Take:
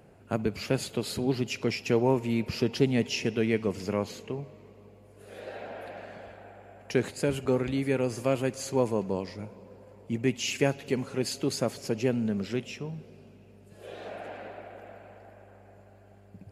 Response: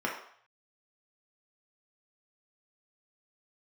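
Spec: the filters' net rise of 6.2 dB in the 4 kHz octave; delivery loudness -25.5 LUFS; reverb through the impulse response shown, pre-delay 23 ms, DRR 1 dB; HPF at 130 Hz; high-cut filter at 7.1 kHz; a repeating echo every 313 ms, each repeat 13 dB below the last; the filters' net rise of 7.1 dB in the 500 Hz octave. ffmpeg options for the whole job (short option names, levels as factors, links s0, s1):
-filter_complex "[0:a]highpass=130,lowpass=7100,equalizer=f=500:t=o:g=8.5,equalizer=f=4000:t=o:g=9,aecho=1:1:313|626|939:0.224|0.0493|0.0108,asplit=2[s0][s1];[1:a]atrim=start_sample=2205,adelay=23[s2];[s1][s2]afir=irnorm=-1:irlink=0,volume=0.335[s3];[s0][s3]amix=inputs=2:normalize=0,volume=0.708"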